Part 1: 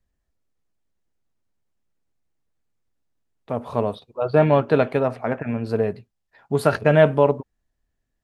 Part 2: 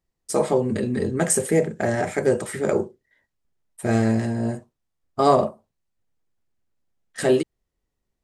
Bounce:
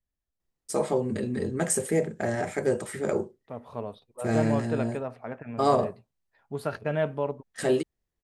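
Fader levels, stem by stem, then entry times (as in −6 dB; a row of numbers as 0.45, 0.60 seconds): −12.5, −5.5 decibels; 0.00, 0.40 seconds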